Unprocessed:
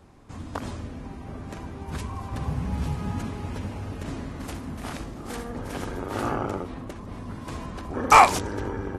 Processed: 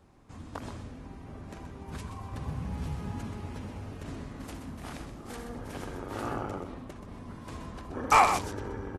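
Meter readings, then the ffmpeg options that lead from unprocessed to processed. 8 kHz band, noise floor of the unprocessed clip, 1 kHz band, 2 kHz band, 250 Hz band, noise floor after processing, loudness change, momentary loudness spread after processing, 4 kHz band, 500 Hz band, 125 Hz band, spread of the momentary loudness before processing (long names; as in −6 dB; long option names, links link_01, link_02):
−6.5 dB, −40 dBFS, −6.5 dB, −6.5 dB, −6.5 dB, −46 dBFS, −6.5 dB, 18 LU, −6.5 dB, −6.5 dB, −6.5 dB, 16 LU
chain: -af "aecho=1:1:127:0.355,volume=-7dB"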